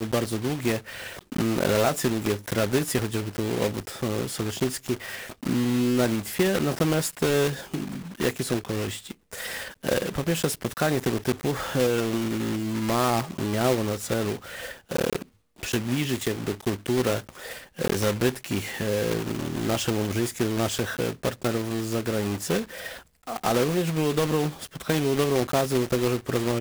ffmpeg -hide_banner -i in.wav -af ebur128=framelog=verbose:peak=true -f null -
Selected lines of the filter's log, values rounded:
Integrated loudness:
  I:         -26.5 LUFS
  Threshold: -36.7 LUFS
Loudness range:
  LRA:         3.0 LU
  Threshold: -46.9 LUFS
  LRA low:   -28.4 LUFS
  LRA high:  -25.3 LUFS
True peak:
  Peak:       -9.8 dBFS